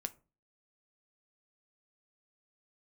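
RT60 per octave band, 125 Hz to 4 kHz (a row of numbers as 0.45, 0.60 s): 0.50, 0.45, 0.35, 0.30, 0.25, 0.20 s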